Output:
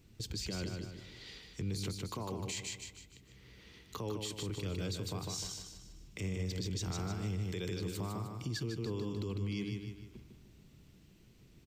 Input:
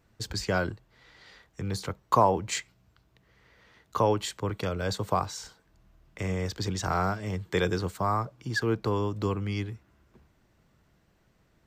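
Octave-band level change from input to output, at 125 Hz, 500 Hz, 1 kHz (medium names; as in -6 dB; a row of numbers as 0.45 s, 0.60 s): -6.0 dB, -13.0 dB, -20.0 dB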